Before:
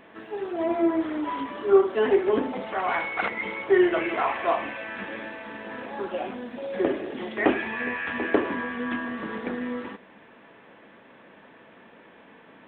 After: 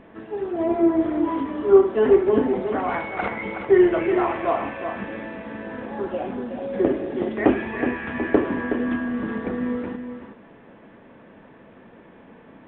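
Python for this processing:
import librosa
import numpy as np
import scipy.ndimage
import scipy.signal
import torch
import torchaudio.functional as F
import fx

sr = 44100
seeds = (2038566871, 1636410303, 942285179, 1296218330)

p1 = fx.tilt_eq(x, sr, slope=-3.0)
y = p1 + fx.echo_single(p1, sr, ms=370, db=-8.0, dry=0)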